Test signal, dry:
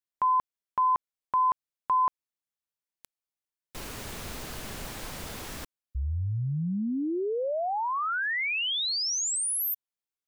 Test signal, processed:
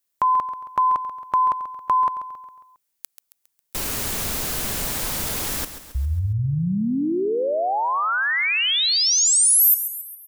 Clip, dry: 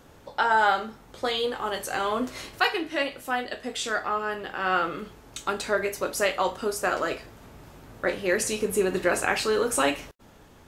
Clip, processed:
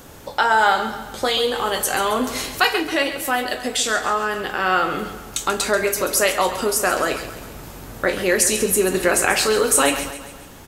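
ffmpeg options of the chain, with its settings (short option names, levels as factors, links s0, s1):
-filter_complex "[0:a]highshelf=f=6200:g=11,asplit=2[s0][s1];[s1]acompressor=threshold=0.0141:ratio=6:attack=77:release=61:detection=rms,volume=1.06[s2];[s0][s2]amix=inputs=2:normalize=0,aecho=1:1:136|272|408|544|680:0.266|0.133|0.0665|0.0333|0.0166,volume=1.41"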